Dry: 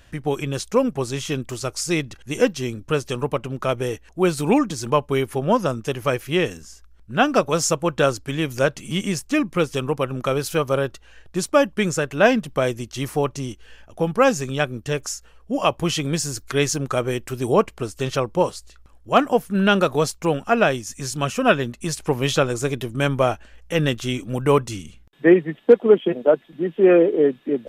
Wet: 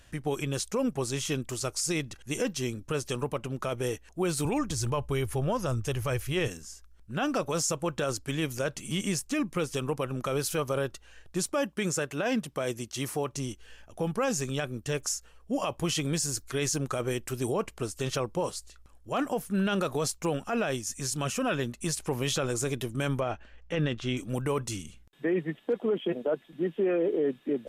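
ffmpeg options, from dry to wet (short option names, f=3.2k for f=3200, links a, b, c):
-filter_complex "[0:a]asettb=1/sr,asplit=3[a][b][c];[a]atrim=end=4.454[d];[b]atrim=start=4.45:end=6.48,asetpts=PTS-STARTPTS,afade=t=in:d=0.004:c=qsin,afade=t=out:st=2.026:d=0.004:c=qsin,lowshelf=f=130:t=q:w=1.5:g=12[e];[c]atrim=start=6.476[f];[d][e]acrossfade=d=0.004:c1=hsin:c2=qsin[g];[g][f]acrossfade=d=0.004:c1=qsin:c2=hsin,asettb=1/sr,asplit=3[h][i][j];[h]atrim=end=11.544[k];[i]atrim=start=11.54:end=13.34,asetpts=PTS-STARTPTS,afade=t=in:d=0.004:c=qsin,afade=t=out:st=1.796:d=0.004:c=qsin,highpass=f=120:p=1[l];[j]atrim=start=13.336[m];[k][l]acrossfade=d=0.004:c1=hsin:c2=qsin[n];[n][m]acrossfade=d=0.004:c1=qsin:c2=hsin,asettb=1/sr,asplit=3[o][p][q];[o]atrim=end=23.204[r];[p]atrim=start=23.2:end=24.17,asetpts=PTS-STARTPTS,afade=t=in:d=0.004:c=qsin,afade=t=out:st=0.966:d=0.004:c=qsin,lowpass=3.5k[s];[q]atrim=start=24.166[t];[r][s]acrossfade=d=0.004:c1=hsin:c2=qsin[u];[u][t]acrossfade=d=0.004:c1=qsin:c2=hsin,equalizer=f=9.3k:t=o:w=1.5:g=6,alimiter=limit=-14.5dB:level=0:latency=1:release=26,volume=-5.5dB"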